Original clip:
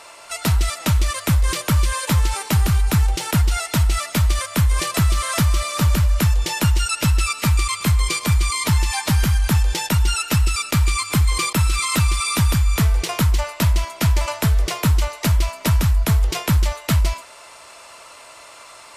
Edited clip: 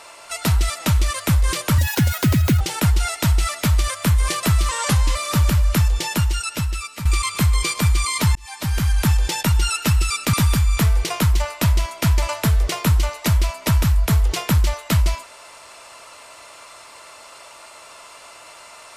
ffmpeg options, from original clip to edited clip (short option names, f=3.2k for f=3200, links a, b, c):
-filter_complex "[0:a]asplit=8[a][b][c][d][e][f][g][h];[a]atrim=end=1.784[i];[b]atrim=start=1.78:end=3.12,asetpts=PTS-STARTPTS,asetrate=71442,aresample=44100[j];[c]atrim=start=3.116:end=5.204[k];[d]atrim=start=5.2:end=5.61,asetpts=PTS-STARTPTS,asetrate=38808,aresample=44100[l];[e]atrim=start=5.606:end=7.51,asetpts=PTS-STARTPTS,afade=t=out:st=0.744:d=1.16:silence=0.237137[m];[f]atrim=start=7.51:end=8.81,asetpts=PTS-STARTPTS,afade=t=in:d=0.004:c=hsin:silence=0.237137,afade=t=out:st=1.296:d=0.004:c=hsin[n];[g]atrim=start=8.81:end=10.792,asetpts=PTS-STARTPTS,afade=t=in:d=0.6[o];[h]atrim=start=12.318[p];[i][j]acrossfade=d=0.004:c1=hsin:c2=hsin[q];[q][k]acrossfade=d=0.004:c1=hsin:c2=hsin[r];[r][l]acrossfade=d=0.004:c1=hsin:c2=hsin[s];[m][n][o]concat=n=3:v=0:a=1[t];[s][t]acrossfade=d=0.004:c1=hsin:c2=hsin[u];[u][p]acrossfade=d=0.004:c1=hsin:c2=hsin"